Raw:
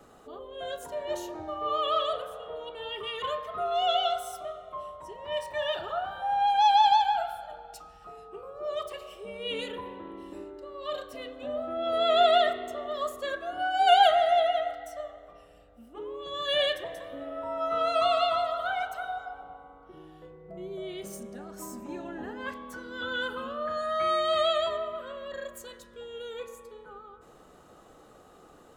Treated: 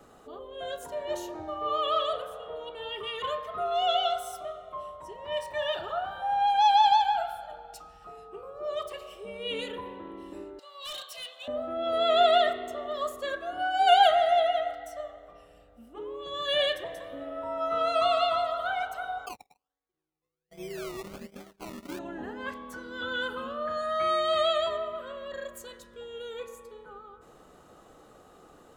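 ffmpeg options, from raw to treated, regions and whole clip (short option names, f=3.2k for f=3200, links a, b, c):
-filter_complex "[0:a]asettb=1/sr,asplit=3[a][b][c];[a]atrim=end=10.594[d];[b]atrim=start=10.59:end=11.48,asetpts=PTS-STARTPTS,afade=t=in:d=0.004:c=qsin,afade=t=out:st=0.886:d=0.004:c=qsin,highpass=f=730:w=0.5412,highpass=f=730:w=1.3066,highshelf=f=2.4k:t=q:w=1.5:g=9,volume=35.5dB,asoftclip=hard,volume=-35.5dB[e];[c]atrim=start=11.476[f];[d][e]acrossfade=d=0.004:c1=hsin:c2=qsin[g];[g][f]acrossfade=d=0.004:c1=qsin:c2=hsin,asettb=1/sr,asplit=3[h][i][j];[h]atrim=end=19.264[k];[i]atrim=start=19.26:end=21.99,asetpts=PTS-STARTPTS,afade=t=in:d=0.004:c=qsin,afade=t=out:st=2.726:d=0.004:c=qsin,agate=range=-40dB:threshold=-42dB:ratio=16:release=100:detection=peak,acrusher=samples=22:mix=1:aa=0.000001:lfo=1:lforange=13.2:lforate=1.3[l];[j]atrim=start=21.986[m];[k][l]acrossfade=d=0.004:c1=hsin:c2=qsin[n];[n][m]acrossfade=d=0.004:c1=qsin:c2=hsin"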